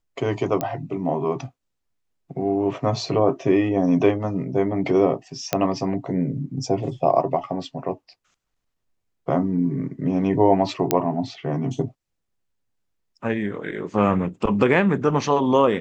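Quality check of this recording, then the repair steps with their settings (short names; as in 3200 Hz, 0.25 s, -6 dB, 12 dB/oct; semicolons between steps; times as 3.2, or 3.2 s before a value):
0.61 pop -10 dBFS
5.53 pop -5 dBFS
10.91 pop -2 dBFS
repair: de-click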